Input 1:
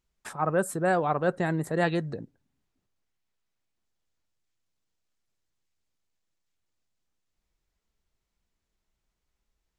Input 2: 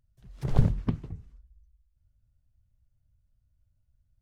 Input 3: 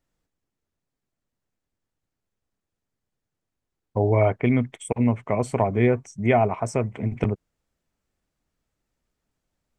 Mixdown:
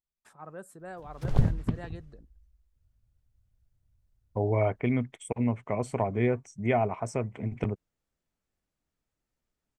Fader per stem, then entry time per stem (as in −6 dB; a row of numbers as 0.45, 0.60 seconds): −18.0, −1.0, −6.5 decibels; 0.00, 0.80, 0.40 seconds